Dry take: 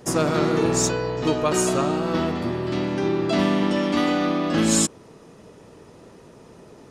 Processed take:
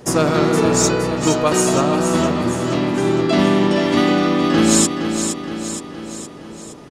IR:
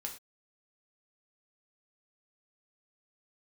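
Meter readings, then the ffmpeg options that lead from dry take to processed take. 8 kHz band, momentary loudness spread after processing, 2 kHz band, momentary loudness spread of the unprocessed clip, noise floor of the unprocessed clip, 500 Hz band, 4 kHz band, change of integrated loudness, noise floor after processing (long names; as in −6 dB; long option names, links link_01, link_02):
+6.0 dB, 16 LU, +6.0 dB, 5 LU, −48 dBFS, +5.5 dB, +6.0 dB, +5.0 dB, −36 dBFS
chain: -af "aecho=1:1:467|934|1401|1868|2335|2802|3269:0.422|0.232|0.128|0.0702|0.0386|0.0212|0.0117,volume=5dB"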